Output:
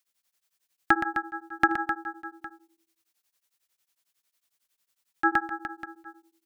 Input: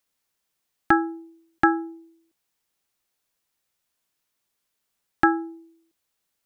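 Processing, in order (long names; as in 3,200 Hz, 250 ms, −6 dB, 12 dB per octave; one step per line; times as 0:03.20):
tilt shelving filter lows −5 dB, about 1,100 Hz
reverse bouncing-ball delay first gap 120 ms, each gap 1.15×, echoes 5
tremolo along a rectified sine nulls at 11 Hz
level −1.5 dB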